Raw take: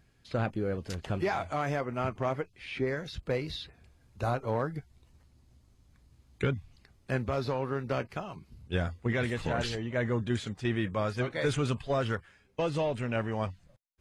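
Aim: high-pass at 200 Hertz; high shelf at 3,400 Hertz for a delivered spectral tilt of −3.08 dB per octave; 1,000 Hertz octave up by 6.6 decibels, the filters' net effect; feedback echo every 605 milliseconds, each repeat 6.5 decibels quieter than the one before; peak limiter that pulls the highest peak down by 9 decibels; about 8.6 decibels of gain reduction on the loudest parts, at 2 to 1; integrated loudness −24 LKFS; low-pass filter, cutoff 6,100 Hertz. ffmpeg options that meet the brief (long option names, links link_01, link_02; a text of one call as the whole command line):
ffmpeg -i in.wav -af "highpass=200,lowpass=6100,equalizer=frequency=1000:width_type=o:gain=8.5,highshelf=frequency=3400:gain=4.5,acompressor=threshold=-38dB:ratio=2,alimiter=level_in=4.5dB:limit=-24dB:level=0:latency=1,volume=-4.5dB,aecho=1:1:605|1210|1815|2420|3025|3630:0.473|0.222|0.105|0.0491|0.0231|0.0109,volume=16.5dB" out.wav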